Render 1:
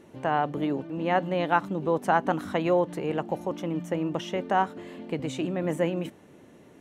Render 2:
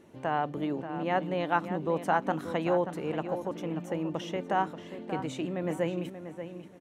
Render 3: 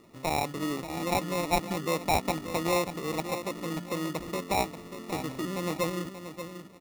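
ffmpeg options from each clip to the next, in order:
-filter_complex "[0:a]asplit=2[a][b];[b]adelay=583,lowpass=f=3.6k:p=1,volume=-10dB,asplit=2[c][d];[d]adelay=583,lowpass=f=3.6k:p=1,volume=0.28,asplit=2[e][f];[f]adelay=583,lowpass=f=3.6k:p=1,volume=0.28[g];[a][c][e][g]amix=inputs=4:normalize=0,volume=-4dB"
-af "aresample=11025,aresample=44100,acrusher=samples=28:mix=1:aa=0.000001"

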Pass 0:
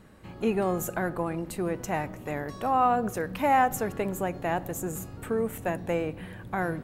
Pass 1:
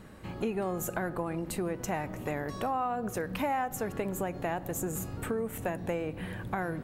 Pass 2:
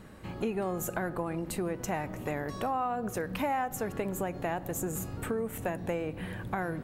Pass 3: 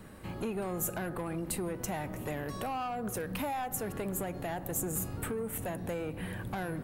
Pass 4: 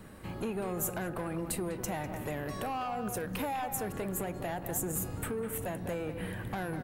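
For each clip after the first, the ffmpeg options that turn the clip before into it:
-af "acompressor=threshold=-34dB:ratio=4,volume=3.5dB"
-af anull
-filter_complex "[0:a]acrossover=split=160|3200[a][b][c];[b]asoftclip=type=tanh:threshold=-31dB[d];[c]aexciter=amount=2.2:drive=4.3:freq=8.9k[e];[a][d][e]amix=inputs=3:normalize=0"
-filter_complex "[0:a]asplit=2[a][b];[b]adelay=200,highpass=300,lowpass=3.4k,asoftclip=type=hard:threshold=-29dB,volume=-8dB[c];[a][c]amix=inputs=2:normalize=0"

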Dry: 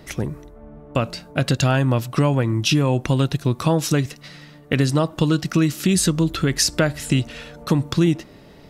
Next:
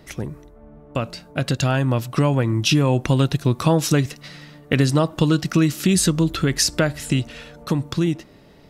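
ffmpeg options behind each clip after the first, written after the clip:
-af "dynaudnorm=f=240:g=17:m=11.5dB,volume=-3.5dB"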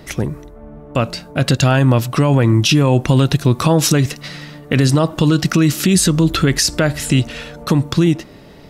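-af "alimiter=limit=-13dB:level=0:latency=1:release=44,volume=8.5dB"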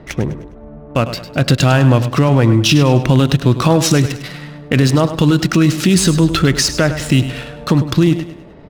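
-af "adynamicsmooth=sensitivity=5.5:basefreq=1.6k,aecho=1:1:102|204|306|408:0.251|0.1|0.0402|0.0161,volume=1.5dB"

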